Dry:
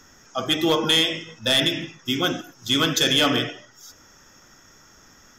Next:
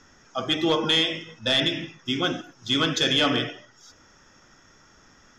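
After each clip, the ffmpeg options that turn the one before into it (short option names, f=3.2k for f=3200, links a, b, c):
-af "lowpass=5.3k,volume=-2dB"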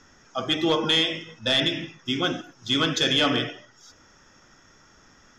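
-af anull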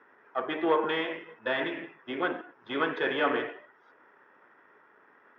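-af "aeval=exprs='if(lt(val(0),0),0.447*val(0),val(0))':c=same,highpass=360,equalizer=f=420:t=q:w=4:g=8,equalizer=f=970:t=q:w=4:g=6,equalizer=f=1.7k:t=q:w=4:g=4,lowpass=f=2.2k:w=0.5412,lowpass=f=2.2k:w=1.3066,volume=-1dB"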